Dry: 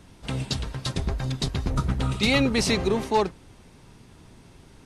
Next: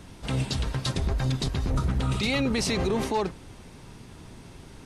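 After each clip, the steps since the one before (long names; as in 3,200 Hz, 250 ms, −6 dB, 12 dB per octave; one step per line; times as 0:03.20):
brickwall limiter −22.5 dBFS, peak gain reduction 10.5 dB
level +4.5 dB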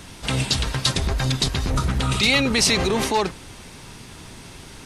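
tilt shelving filter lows −4.5 dB, about 1,100 Hz
level +7.5 dB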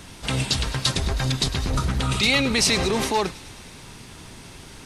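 delay with a high-pass on its return 105 ms, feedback 72%, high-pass 2,100 Hz, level −16 dB
level −1.5 dB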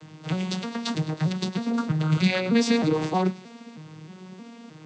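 vocoder with an arpeggio as carrier minor triad, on D#3, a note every 313 ms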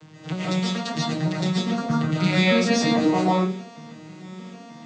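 convolution reverb RT60 0.40 s, pre-delay 105 ms, DRR −6 dB
level −2 dB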